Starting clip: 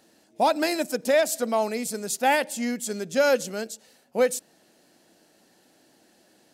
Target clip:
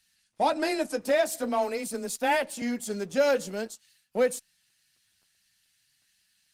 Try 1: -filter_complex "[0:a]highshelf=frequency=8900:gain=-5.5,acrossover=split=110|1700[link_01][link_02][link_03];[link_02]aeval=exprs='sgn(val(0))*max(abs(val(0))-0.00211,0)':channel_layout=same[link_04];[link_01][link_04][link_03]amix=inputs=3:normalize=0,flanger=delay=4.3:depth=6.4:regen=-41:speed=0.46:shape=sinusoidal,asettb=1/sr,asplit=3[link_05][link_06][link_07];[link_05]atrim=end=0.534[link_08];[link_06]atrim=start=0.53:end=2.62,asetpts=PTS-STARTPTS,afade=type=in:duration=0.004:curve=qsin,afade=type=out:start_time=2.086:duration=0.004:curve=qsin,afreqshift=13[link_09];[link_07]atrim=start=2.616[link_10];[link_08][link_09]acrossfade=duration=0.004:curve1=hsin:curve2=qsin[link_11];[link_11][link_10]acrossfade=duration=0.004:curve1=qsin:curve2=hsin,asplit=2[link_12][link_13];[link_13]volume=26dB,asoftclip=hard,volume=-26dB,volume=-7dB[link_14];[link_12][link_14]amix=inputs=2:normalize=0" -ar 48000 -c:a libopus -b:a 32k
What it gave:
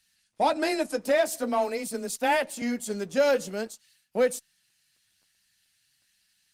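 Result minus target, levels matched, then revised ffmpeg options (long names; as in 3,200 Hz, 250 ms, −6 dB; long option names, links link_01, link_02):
gain into a clipping stage and back: distortion −5 dB
-filter_complex "[0:a]highshelf=frequency=8900:gain=-5.5,acrossover=split=110|1700[link_01][link_02][link_03];[link_02]aeval=exprs='sgn(val(0))*max(abs(val(0))-0.00211,0)':channel_layout=same[link_04];[link_01][link_04][link_03]amix=inputs=3:normalize=0,flanger=delay=4.3:depth=6.4:regen=-41:speed=0.46:shape=sinusoidal,asettb=1/sr,asplit=3[link_05][link_06][link_07];[link_05]atrim=end=0.534[link_08];[link_06]atrim=start=0.53:end=2.62,asetpts=PTS-STARTPTS,afade=type=in:duration=0.004:curve=qsin,afade=type=out:start_time=2.086:duration=0.004:curve=qsin,afreqshift=13[link_09];[link_07]atrim=start=2.616[link_10];[link_08][link_09]acrossfade=duration=0.004:curve1=hsin:curve2=qsin[link_11];[link_11][link_10]acrossfade=duration=0.004:curve1=qsin:curve2=hsin,asplit=2[link_12][link_13];[link_13]volume=33dB,asoftclip=hard,volume=-33dB,volume=-7dB[link_14];[link_12][link_14]amix=inputs=2:normalize=0" -ar 48000 -c:a libopus -b:a 32k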